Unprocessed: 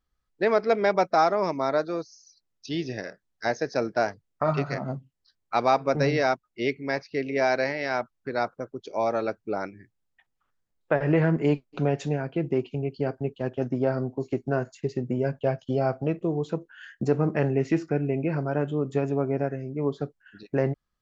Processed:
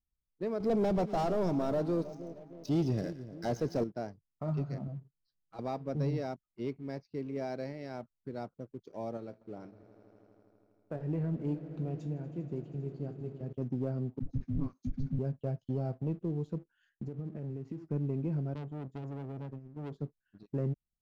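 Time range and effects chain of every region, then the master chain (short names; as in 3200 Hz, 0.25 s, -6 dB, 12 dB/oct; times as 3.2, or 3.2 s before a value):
0.6–3.84 sample leveller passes 3 + notch 1800 Hz, Q 15 + split-band echo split 890 Hz, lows 0.31 s, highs 0.115 s, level -15 dB
4.87–5.59 compressor 2:1, threshold -41 dBFS + comb 6.2 ms, depth 92%
9.17–13.53 resonator 59 Hz, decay 0.28 s + swelling echo 80 ms, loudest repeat 5, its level -18 dB
14.19–15.19 dispersion highs, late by 0.103 s, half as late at 520 Hz + frequency shift -390 Hz
16.89–17.91 high shelf 4100 Hz -11.5 dB + compressor 5:1, threshold -30 dBFS
18.54–19.92 gate -33 dBFS, range -10 dB + core saturation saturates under 1800 Hz
whole clip: EQ curve 180 Hz 0 dB, 1800 Hz -21 dB, 4600 Hz -14 dB; sample leveller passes 1; gain -7 dB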